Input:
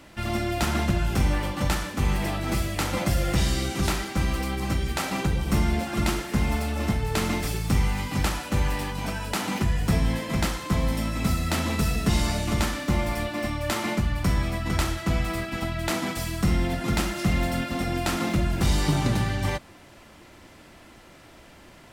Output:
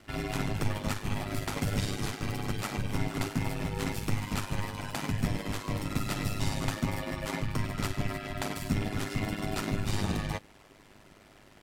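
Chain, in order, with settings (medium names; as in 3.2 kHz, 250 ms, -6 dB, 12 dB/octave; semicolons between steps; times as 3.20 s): rattle on loud lows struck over -25 dBFS, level -30 dBFS; granular stretch 0.53×, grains 102 ms; ring modulator 51 Hz; trim -2.5 dB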